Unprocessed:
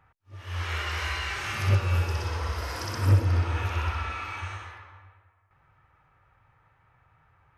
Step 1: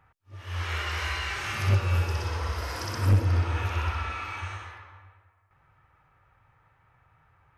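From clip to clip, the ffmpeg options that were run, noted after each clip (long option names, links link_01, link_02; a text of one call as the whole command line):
ffmpeg -i in.wav -af "aeval=exprs='clip(val(0),-1,0.141)':channel_layout=same" out.wav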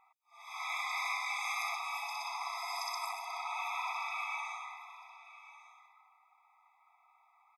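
ffmpeg -i in.wav -af "aecho=1:1:1147:0.15,afftfilt=real='re*eq(mod(floor(b*sr/1024/660),2),1)':imag='im*eq(mod(floor(b*sr/1024/660),2),1)':win_size=1024:overlap=0.75" out.wav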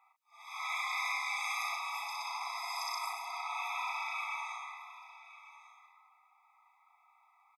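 ffmpeg -i in.wav -filter_complex "[0:a]highpass=frequency=740:width=0.5412,highpass=frequency=740:width=1.3066,asplit=2[link_01][link_02];[link_02]adelay=36,volume=-7dB[link_03];[link_01][link_03]amix=inputs=2:normalize=0" out.wav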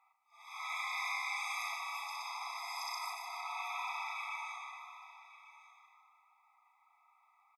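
ffmpeg -i in.wav -af "aecho=1:1:151|302|453|604|755|906:0.355|0.185|0.0959|0.0499|0.0259|0.0135,volume=-3.5dB" out.wav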